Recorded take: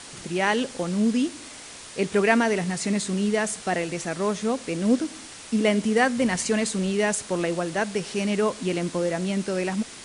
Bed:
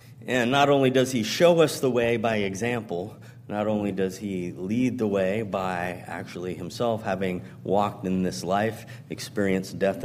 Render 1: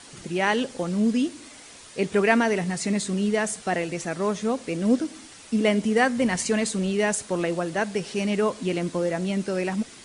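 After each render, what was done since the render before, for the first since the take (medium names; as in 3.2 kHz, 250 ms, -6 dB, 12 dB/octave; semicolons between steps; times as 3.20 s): noise reduction 6 dB, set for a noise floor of -42 dBFS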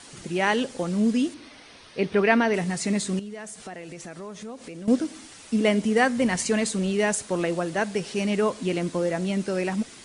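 1.34–2.54 s: Savitzky-Golay filter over 15 samples; 3.19–4.88 s: compression 4:1, threshold -37 dBFS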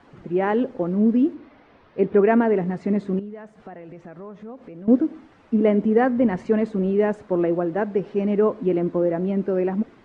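low-pass 1.3 kHz 12 dB/octave; dynamic bell 340 Hz, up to +7 dB, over -36 dBFS, Q 1.1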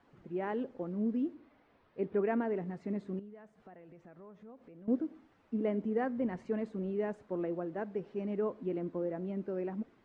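trim -14.5 dB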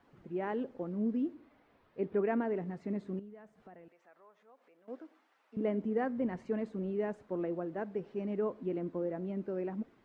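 3.88–5.57 s: high-pass 740 Hz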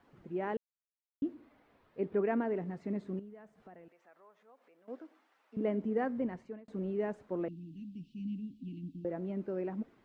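0.57–1.22 s: mute; 6.17–6.68 s: fade out; 7.48–9.05 s: Chebyshev band-stop 290–2700 Hz, order 5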